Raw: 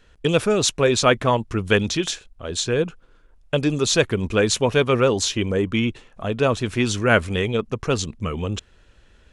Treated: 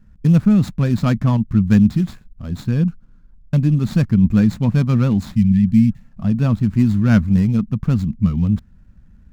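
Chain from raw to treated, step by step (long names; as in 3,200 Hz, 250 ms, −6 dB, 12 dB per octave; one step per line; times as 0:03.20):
running median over 15 samples
low shelf with overshoot 290 Hz +12.5 dB, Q 3
healed spectral selection 0:05.38–0:06.07, 240–1,700 Hz after
level −5.5 dB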